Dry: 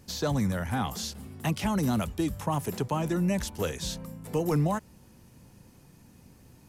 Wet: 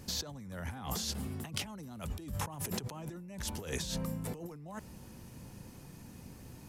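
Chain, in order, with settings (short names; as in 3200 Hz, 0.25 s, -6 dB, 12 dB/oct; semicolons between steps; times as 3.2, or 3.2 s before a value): negative-ratio compressor -38 dBFS, ratio -1; gain -3 dB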